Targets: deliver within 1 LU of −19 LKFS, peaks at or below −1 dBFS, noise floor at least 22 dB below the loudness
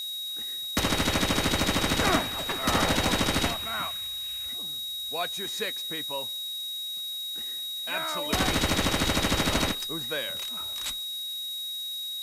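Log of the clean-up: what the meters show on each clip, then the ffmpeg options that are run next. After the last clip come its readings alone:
interfering tone 3,800 Hz; level of the tone −32 dBFS; background noise floor −35 dBFS; target noise floor −50 dBFS; integrated loudness −27.5 LKFS; sample peak −10.0 dBFS; target loudness −19.0 LKFS
→ -af "bandreject=frequency=3800:width=30"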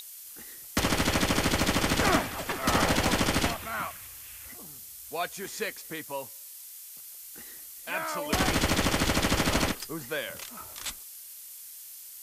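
interfering tone none found; background noise floor −46 dBFS; target noise floor −50 dBFS
→ -af "afftdn=noise_reduction=6:noise_floor=-46"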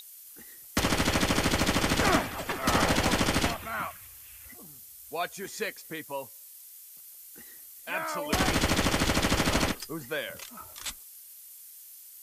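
background noise floor −49 dBFS; target noise floor −50 dBFS
→ -af "afftdn=noise_reduction=6:noise_floor=-49"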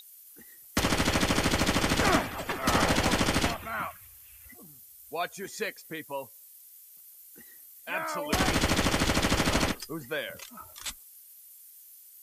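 background noise floor −53 dBFS; integrated loudness −28.0 LKFS; sample peak −11.0 dBFS; target loudness −19.0 LKFS
→ -af "volume=9dB"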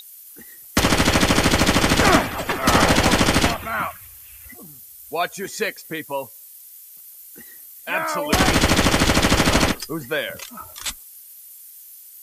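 integrated loudness −19.0 LKFS; sample peak −2.0 dBFS; background noise floor −44 dBFS

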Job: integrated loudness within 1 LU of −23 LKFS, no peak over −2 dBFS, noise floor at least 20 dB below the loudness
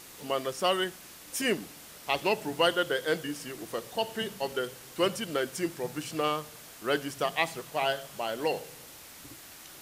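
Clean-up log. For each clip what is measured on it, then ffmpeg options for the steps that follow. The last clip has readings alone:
background noise floor −49 dBFS; target noise floor −51 dBFS; integrated loudness −31.0 LKFS; sample peak −11.5 dBFS; target loudness −23.0 LKFS
→ -af "afftdn=noise_reduction=6:noise_floor=-49"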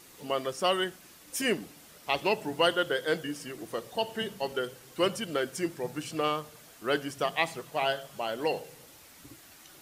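background noise floor −54 dBFS; integrated loudness −31.0 LKFS; sample peak −11.5 dBFS; target loudness −23.0 LKFS
→ -af "volume=8dB"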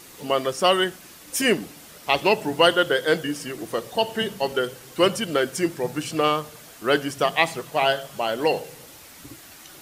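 integrated loudness −23.0 LKFS; sample peak −3.5 dBFS; background noise floor −46 dBFS

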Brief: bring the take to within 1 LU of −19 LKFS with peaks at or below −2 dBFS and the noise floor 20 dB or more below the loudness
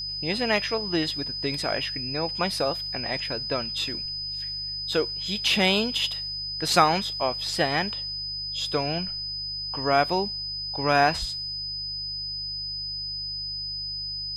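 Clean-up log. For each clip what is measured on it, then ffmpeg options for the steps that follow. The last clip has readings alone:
mains hum 50 Hz; hum harmonics up to 150 Hz; level of the hum −44 dBFS; interfering tone 5,000 Hz; level of the tone −30 dBFS; integrated loudness −26.0 LKFS; sample peak −4.5 dBFS; target loudness −19.0 LKFS
→ -af "bandreject=frequency=50:width_type=h:width=4,bandreject=frequency=100:width_type=h:width=4,bandreject=frequency=150:width_type=h:width=4"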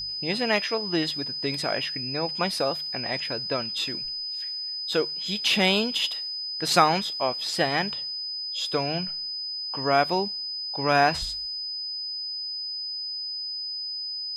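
mains hum none found; interfering tone 5,000 Hz; level of the tone −30 dBFS
→ -af "bandreject=frequency=5000:width=30"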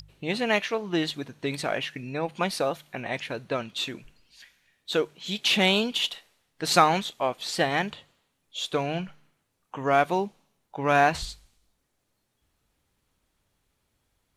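interfering tone none found; integrated loudness −26.5 LKFS; sample peak −4.5 dBFS; target loudness −19.0 LKFS
→ -af "volume=7.5dB,alimiter=limit=-2dB:level=0:latency=1"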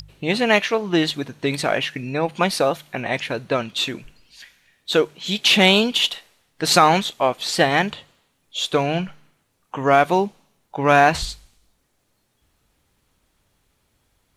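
integrated loudness −19.5 LKFS; sample peak −2.0 dBFS; background noise floor −68 dBFS

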